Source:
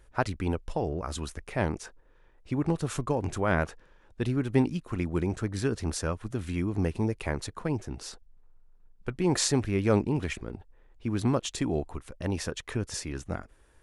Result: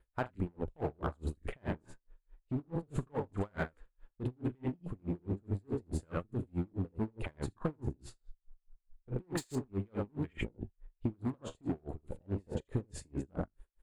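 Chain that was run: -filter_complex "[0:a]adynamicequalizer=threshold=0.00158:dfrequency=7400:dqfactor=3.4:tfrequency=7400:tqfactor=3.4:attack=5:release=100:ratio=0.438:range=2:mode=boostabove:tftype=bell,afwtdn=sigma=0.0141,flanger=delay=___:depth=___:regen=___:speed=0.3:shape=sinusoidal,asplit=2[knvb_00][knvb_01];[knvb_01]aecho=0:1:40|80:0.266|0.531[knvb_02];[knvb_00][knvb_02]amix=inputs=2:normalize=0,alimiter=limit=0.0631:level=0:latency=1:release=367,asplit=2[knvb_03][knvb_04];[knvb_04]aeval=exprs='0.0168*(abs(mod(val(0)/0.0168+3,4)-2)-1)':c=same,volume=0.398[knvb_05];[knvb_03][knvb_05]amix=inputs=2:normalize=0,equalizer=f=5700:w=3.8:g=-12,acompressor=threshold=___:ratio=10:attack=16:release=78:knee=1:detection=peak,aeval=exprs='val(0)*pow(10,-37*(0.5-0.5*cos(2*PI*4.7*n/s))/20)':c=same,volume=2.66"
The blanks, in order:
3.9, 9.8, -79, 0.0126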